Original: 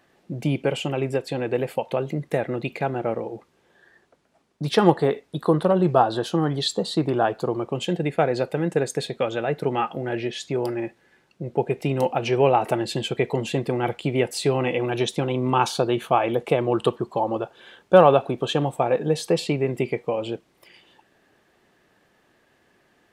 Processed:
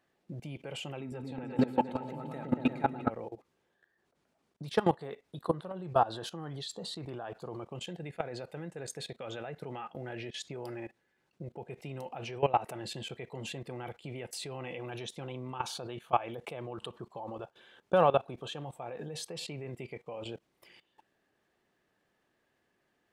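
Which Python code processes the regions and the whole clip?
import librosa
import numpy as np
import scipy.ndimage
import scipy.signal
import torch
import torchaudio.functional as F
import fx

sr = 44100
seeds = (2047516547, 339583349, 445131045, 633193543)

y = fx.chain(x, sr, fx.high_shelf(hz=8000.0, db=-2.5),
    fx.small_body(hz=(250.0, 870.0, 1300.0, 3800.0), ring_ms=60, db=15),
    fx.echo_opening(ms=115, hz=400, octaves=2, feedback_pct=70, wet_db=0), at=(1.0, 3.1))
y = fx.dynamic_eq(y, sr, hz=310.0, q=1.0, threshold_db=-34.0, ratio=4.0, max_db=-5)
y = fx.level_steps(y, sr, step_db=18)
y = y * 10.0 ** (-4.5 / 20.0)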